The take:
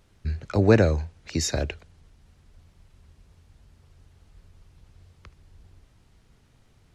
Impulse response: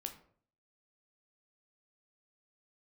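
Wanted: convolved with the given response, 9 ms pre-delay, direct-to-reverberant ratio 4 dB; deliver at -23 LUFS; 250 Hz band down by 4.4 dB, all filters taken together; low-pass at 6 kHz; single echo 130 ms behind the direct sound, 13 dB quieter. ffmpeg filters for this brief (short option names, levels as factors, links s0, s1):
-filter_complex "[0:a]lowpass=6000,equalizer=f=250:t=o:g=-6,aecho=1:1:130:0.224,asplit=2[s0][s1];[1:a]atrim=start_sample=2205,adelay=9[s2];[s1][s2]afir=irnorm=-1:irlink=0,volume=0.841[s3];[s0][s3]amix=inputs=2:normalize=0,volume=0.944"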